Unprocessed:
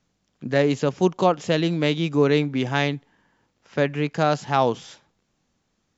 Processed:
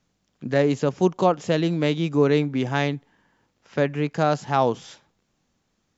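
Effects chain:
dynamic equaliser 3,200 Hz, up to −4 dB, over −38 dBFS, Q 0.72

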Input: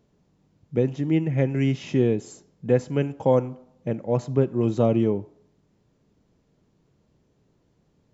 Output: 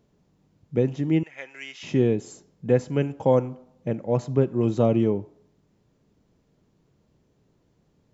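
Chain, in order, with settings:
0:01.23–0:01.83: high-pass filter 1,400 Hz 12 dB per octave

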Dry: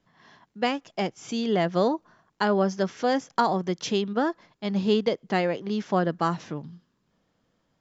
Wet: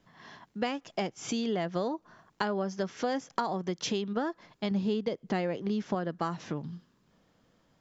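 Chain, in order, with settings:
0:04.71–0:05.95: low-shelf EQ 400 Hz +5.5 dB
downward compressor 4 to 1, threshold −34 dBFS, peak gain reduction 16.5 dB
level +4 dB

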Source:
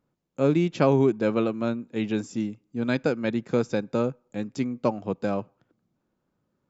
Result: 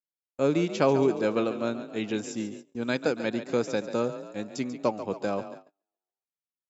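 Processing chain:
bass and treble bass −7 dB, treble +6 dB
echo with shifted repeats 140 ms, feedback 54%, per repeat +32 Hz, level −12 dB
noise gate −41 dBFS, range −35 dB
level −1 dB

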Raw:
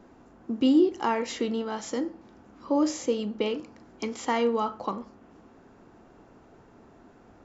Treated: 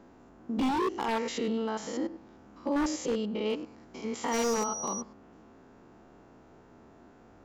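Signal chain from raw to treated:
spectrum averaged block by block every 100 ms
0:04.31–0:05.00: steady tone 5,800 Hz −35 dBFS
wave folding −22.5 dBFS

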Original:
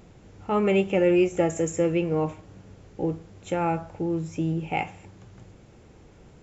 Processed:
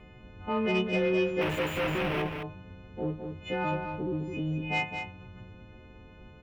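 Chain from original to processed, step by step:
every partial snapped to a pitch grid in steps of 3 semitones
spectral tilt −1.5 dB per octave
in parallel at 0 dB: downward compressor, threshold −32 dBFS, peak gain reduction 16.5 dB
0:01.41–0:02.22: on the sum: comparator with hysteresis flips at −37 dBFS
high shelf with overshoot 4,000 Hz −14 dB, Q 3
soft clipping −10.5 dBFS, distortion −20 dB
on a send: single-tap delay 210 ms −6.5 dB
on the sum: level −9 dB

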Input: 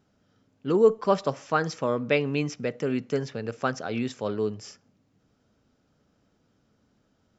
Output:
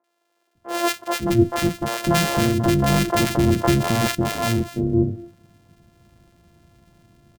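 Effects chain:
samples sorted by size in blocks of 128 samples
low-shelf EQ 340 Hz +9 dB
automatic gain control gain up to 10 dB
three-band delay without the direct sound mids, highs, lows 40/550 ms, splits 450/1,400 Hz
0:02.04–0:04.15: envelope flattener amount 50%

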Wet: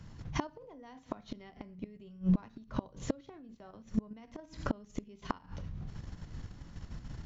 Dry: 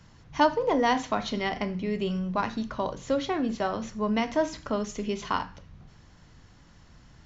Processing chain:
low-shelf EQ 360 Hz +9.5 dB
output level in coarse steps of 9 dB
gate with flip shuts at −22 dBFS, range −28 dB
level +4 dB

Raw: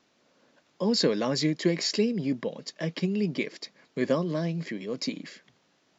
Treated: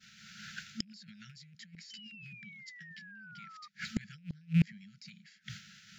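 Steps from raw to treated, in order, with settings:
loose part that buzzes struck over −31 dBFS, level −30 dBFS
downward expander −60 dBFS
brick-wall band-stop 220–1,300 Hz
dynamic equaliser 170 Hz, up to +8 dB, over −45 dBFS, Q 2.6
brickwall limiter −21.5 dBFS, peak gain reduction 9 dB
compressor whose output falls as the input rises −35 dBFS, ratio −1
sound drawn into the spectrogram fall, 0:01.90–0:03.68, 1,200–3,100 Hz −33 dBFS
gate with flip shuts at −35 dBFS, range −37 dB
level +18 dB

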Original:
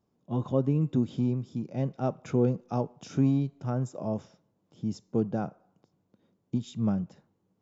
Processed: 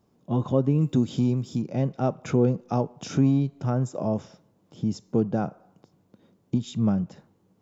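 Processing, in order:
in parallel at +3 dB: downward compressor, threshold −36 dBFS, peak gain reduction 15.5 dB
0:00.78–0:01.62: on the sum: high-shelf EQ 4,300 Hz +11.5 dB
level +1.5 dB

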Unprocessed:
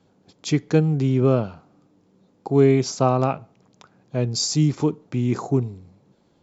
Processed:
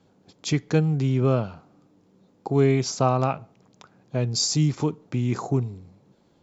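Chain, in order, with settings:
dynamic equaliser 340 Hz, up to −5 dB, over −27 dBFS, Q 0.75

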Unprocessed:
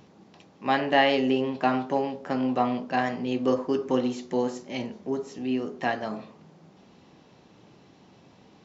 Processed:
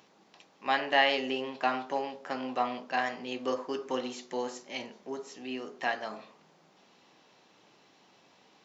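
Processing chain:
high-pass filter 990 Hz 6 dB per octave

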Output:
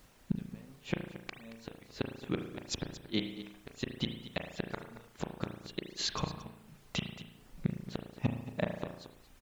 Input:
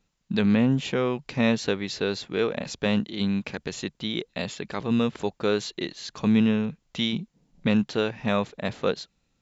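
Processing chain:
gate with flip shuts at −19 dBFS, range −36 dB
low-shelf EQ 67 Hz +7.5 dB
background noise pink −66 dBFS
brickwall limiter −23.5 dBFS, peak gain reduction 8 dB
single-tap delay 226 ms −13.5 dB
reverb reduction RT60 0.64 s
on a send at −4.5 dB: hum removal 60.93 Hz, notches 34 + convolution reverb RT60 0.75 s, pre-delay 35 ms
on the sum: level +4 dB

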